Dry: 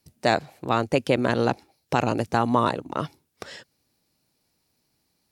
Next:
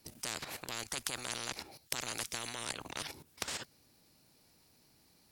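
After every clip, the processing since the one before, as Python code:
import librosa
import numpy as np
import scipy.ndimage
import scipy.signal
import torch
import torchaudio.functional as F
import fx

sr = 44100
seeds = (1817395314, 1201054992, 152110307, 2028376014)

y = fx.level_steps(x, sr, step_db=14)
y = fx.spectral_comp(y, sr, ratio=10.0)
y = F.gain(torch.from_numpy(y), 1.0).numpy()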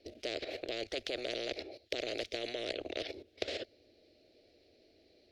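y = fx.curve_eq(x, sr, hz=(100.0, 150.0, 360.0, 640.0, 950.0, 2100.0, 4100.0, 8700.0, 15000.0), db=(0, -15, 11, 12, -19, 1, 2, -24, -27))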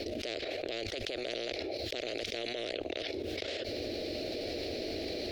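y = fx.env_flatten(x, sr, amount_pct=100)
y = F.gain(torch.from_numpy(y), -4.0).numpy()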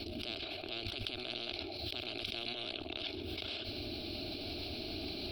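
y = fx.fixed_phaser(x, sr, hz=1900.0, stages=6)
y = y + 10.0 ** (-11.0 / 20.0) * np.pad(y, (int(131 * sr / 1000.0), 0))[:len(y)]
y = F.gain(torch.from_numpy(y), 1.0).numpy()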